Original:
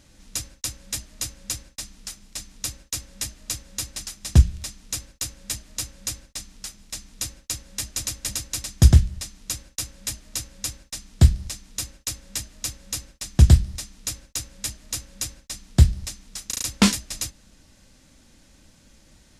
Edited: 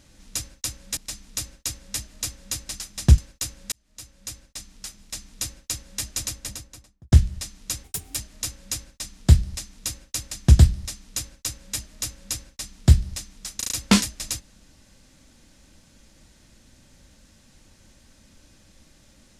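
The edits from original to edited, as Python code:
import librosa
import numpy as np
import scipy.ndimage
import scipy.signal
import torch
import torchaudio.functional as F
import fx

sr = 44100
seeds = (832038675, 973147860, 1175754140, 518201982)

y = fx.studio_fade_out(x, sr, start_s=7.97, length_s=0.95)
y = fx.edit(y, sr, fx.cut(start_s=0.97, length_s=1.27),
    fx.cut(start_s=4.45, length_s=0.53),
    fx.fade_in_span(start_s=5.52, length_s=1.73, curve='qsin'),
    fx.speed_span(start_s=9.64, length_s=0.44, speed=1.4),
    fx.cut(start_s=12.24, length_s=0.98), tone=tone)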